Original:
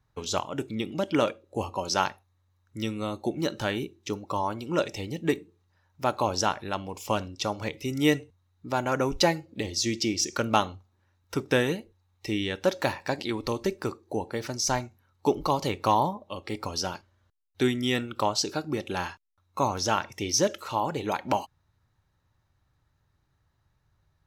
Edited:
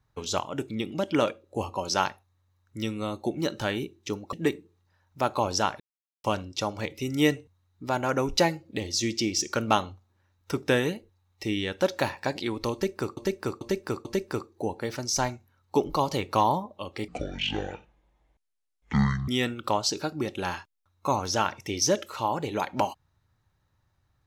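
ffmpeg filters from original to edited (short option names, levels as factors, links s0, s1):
-filter_complex "[0:a]asplit=9[s0][s1][s2][s3][s4][s5][s6][s7][s8];[s0]atrim=end=4.332[s9];[s1]atrim=start=5.158:end=6.63,asetpts=PTS-STARTPTS,afade=t=out:st=1.468:d=0.004:c=hsin[s10];[s2]atrim=start=6.63:end=7.07,asetpts=PTS-STARTPTS,volume=0[s11];[s3]atrim=start=7.07:end=14.002,asetpts=PTS-STARTPTS,afade=t=in:d=0.004:c=hsin[s12];[s4]atrim=start=13.558:end=14.002[s13];[s5]atrim=start=13.558:end=14.002[s14];[s6]atrim=start=13.558:end=16.594[s15];[s7]atrim=start=16.59:end=17.8,asetpts=PTS-STARTPTS,asetrate=24255,aresample=44100[s16];[s8]atrim=start=17.796[s17];[s10][s11][s12]concat=n=3:v=0:a=1[s18];[s9][s18]acrossfade=d=0.004:c1=hsin:c2=hsin[s19];[s19][s13]acrossfade=d=0.004:c1=hsin:c2=hsin[s20];[s20][s14]acrossfade=d=0.004:c1=hsin:c2=hsin[s21];[s21][s15]acrossfade=d=0.004:c1=hsin:c2=hsin[s22];[s22][s16]acrossfade=d=0.004:c1=hsin:c2=hsin[s23];[s23][s17]acrossfade=d=0.004:c1=hsin:c2=hsin"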